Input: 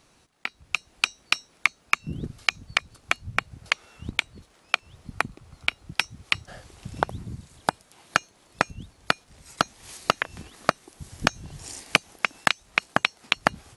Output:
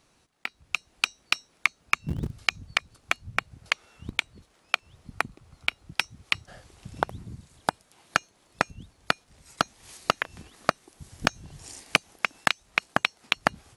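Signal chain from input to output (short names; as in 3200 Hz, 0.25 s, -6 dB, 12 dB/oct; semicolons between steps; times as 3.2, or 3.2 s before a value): 1.8–2.69 bell 75 Hz +8 dB 2.7 oct; in parallel at -9 dB: sample gate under -22 dBFS; on the sum: gain -4.5 dB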